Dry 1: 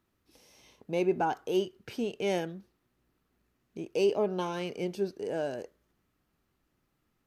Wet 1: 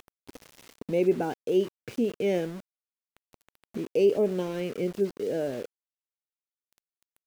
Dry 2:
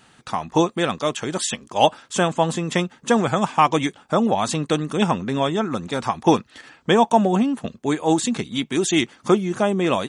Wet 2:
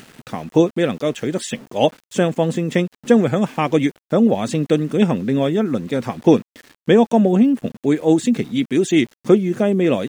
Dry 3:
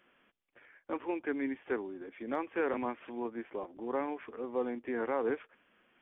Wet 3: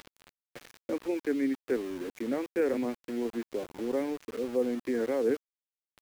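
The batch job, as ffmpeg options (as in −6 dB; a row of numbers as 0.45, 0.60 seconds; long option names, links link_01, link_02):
-af "acompressor=mode=upward:threshold=-34dB:ratio=2.5,equalizer=frequency=125:width_type=o:width=1:gain=8,equalizer=frequency=250:width_type=o:width=1:gain=9,equalizer=frequency=500:width_type=o:width=1:gain=10,equalizer=frequency=1000:width_type=o:width=1:gain=-7,equalizer=frequency=2000:width_type=o:width=1:gain=7,aeval=exprs='val(0)*gte(abs(val(0)),0.0178)':channel_layout=same,volume=-5.5dB"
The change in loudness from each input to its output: +3.5, +3.0, +4.5 LU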